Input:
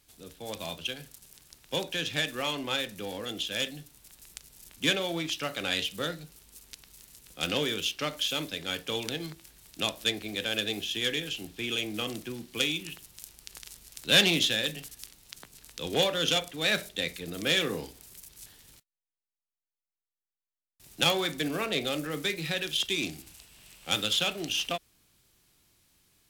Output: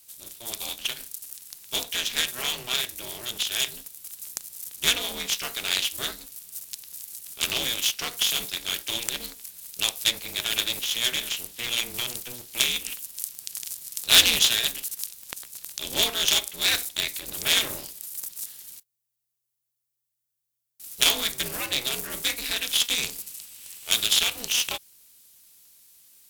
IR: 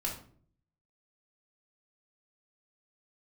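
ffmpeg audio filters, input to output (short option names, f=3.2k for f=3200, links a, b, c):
-af "crystalizer=i=8.5:c=0,aeval=exprs='val(0)*sgn(sin(2*PI*120*n/s))':c=same,volume=-7.5dB"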